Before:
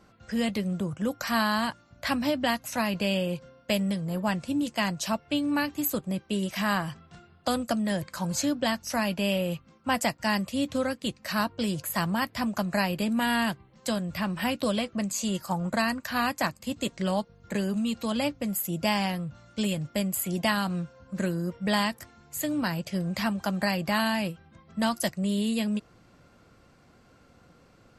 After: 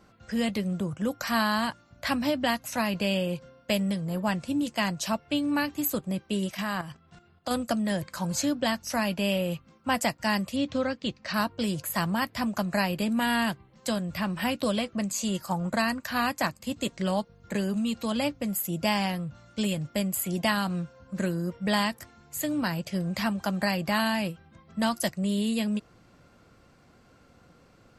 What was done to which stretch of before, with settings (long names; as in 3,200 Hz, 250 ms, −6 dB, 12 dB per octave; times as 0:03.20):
0:06.50–0:07.51: output level in coarse steps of 10 dB
0:10.56–0:11.34: low-pass filter 6,000 Hz 24 dB per octave